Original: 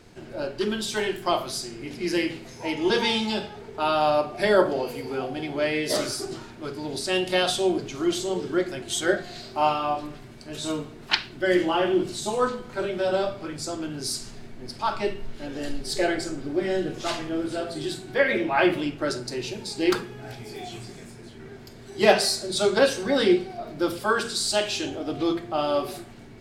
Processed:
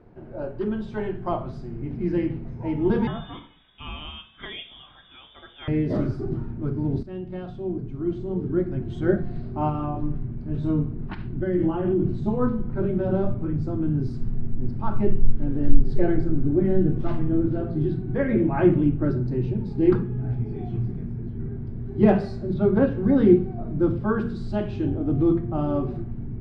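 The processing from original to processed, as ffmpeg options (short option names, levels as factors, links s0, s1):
-filter_complex "[0:a]asettb=1/sr,asplit=3[s0][s1][s2];[s0]atrim=end=3.074[s3];[s1]atrim=start=3.07:end=5.68,asetpts=PTS-STARTPTS,afade=t=in:d=0.004:c=qsin,afade=t=out:st=2.606:d=0.004:c=qsin,lowpass=f=3200:t=q:w=0.5098,lowpass=f=3200:t=q:w=0.6013,lowpass=f=3200:t=q:w=0.9,lowpass=f=3200:t=q:w=2.563,afreqshift=-3800[s4];[s2]atrim=start=5.676[s5];[s3][s4]acrossfade=d=0.004:c1=hsin:c2=qsin[s6];[s6][s5]acrossfade=d=0.004:c1=qsin:c2=hsin,asettb=1/sr,asplit=3[s7][s8][s9];[s7]atrim=end=9.694[s10];[s8]atrim=start=9.69:end=12.21,asetpts=PTS-STARTPTS,afade=t=in:d=0.004:c=qsin,afade=t=out:st=2.516:d=0.004:c=qsin,acompressor=threshold=0.0794:ratio=6:attack=3.2:release=140:knee=1:detection=peak[s11];[s9]atrim=start=12.206[s12];[s10][s11]acrossfade=d=0.004:c1=hsin:c2=qsin[s13];[s13][s12]acrossfade=d=0.004:c1=qsin:c2=hsin,asettb=1/sr,asplit=3[s14][s15][s16];[s14]atrim=end=17.374[s17];[s15]atrim=start=17.37:end=19.22,asetpts=PTS-STARTPTS,afade=t=in:d=0.004:c=qsin,afade=t=out:st=1.846:d=0.004:c=qsin,bandreject=f=7000:w=5.2[s18];[s16]atrim=start=19.216[s19];[s17][s18]acrossfade=d=0.004:c1=hsin:c2=qsin[s20];[s20][s19]acrossfade=d=0.004:c1=qsin:c2=hsin,asplit=3[s21][s22][s23];[s21]afade=t=out:st=22.53:d=0.02[s24];[s22]lowpass=3200,afade=t=in:st=22.53:d=0.02,afade=t=out:st=23.02:d=0.02[s25];[s23]afade=t=in:st=23.02:d=0.02[s26];[s24][s25][s26]amix=inputs=3:normalize=0,asplit=2[s27][s28];[s27]atrim=end=7.03,asetpts=PTS-STARTPTS,afade=t=out:st=7.026:d=0.004:c=hsin:silence=0.251189[s29];[s28]atrim=start=7.03,asetpts=PTS-STARTPTS,afade=t=in:d=1.99:c=qua:silence=0.251189[s30];[s29][s30]concat=n=2:v=0:a=1,lowpass=1000,asubboost=boost=9.5:cutoff=190"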